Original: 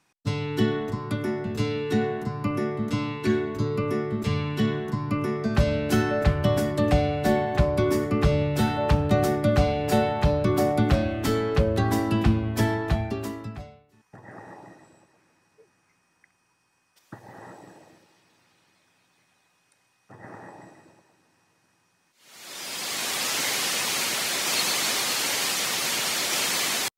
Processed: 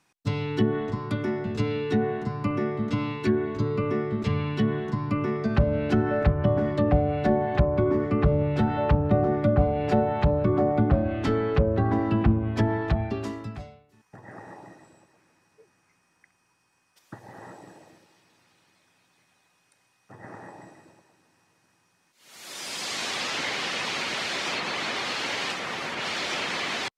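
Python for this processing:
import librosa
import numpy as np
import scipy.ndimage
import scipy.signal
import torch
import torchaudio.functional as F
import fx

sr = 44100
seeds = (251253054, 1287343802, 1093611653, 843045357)

y = fx.high_shelf(x, sr, hz=6100.0, db=8.0, at=(25.5, 25.95))
y = fx.env_lowpass_down(y, sr, base_hz=1000.0, full_db=-17.5)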